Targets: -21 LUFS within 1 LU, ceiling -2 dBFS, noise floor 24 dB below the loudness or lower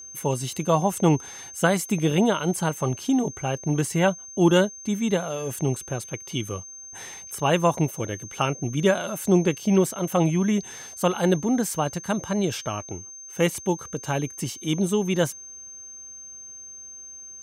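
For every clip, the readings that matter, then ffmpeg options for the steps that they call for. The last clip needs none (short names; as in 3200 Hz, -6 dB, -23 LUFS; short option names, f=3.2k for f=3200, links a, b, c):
steady tone 6300 Hz; tone level -39 dBFS; loudness -24.5 LUFS; peak -6.0 dBFS; loudness target -21.0 LUFS
-> -af "bandreject=f=6.3k:w=30"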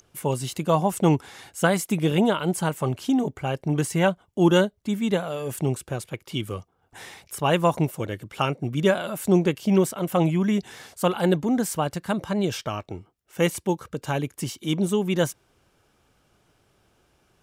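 steady tone none; loudness -24.5 LUFS; peak -6.0 dBFS; loudness target -21.0 LUFS
-> -af "volume=3.5dB"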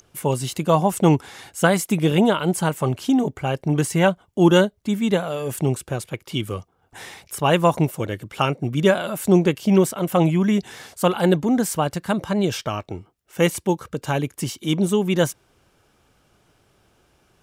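loudness -21.0 LUFS; peak -2.5 dBFS; noise floor -63 dBFS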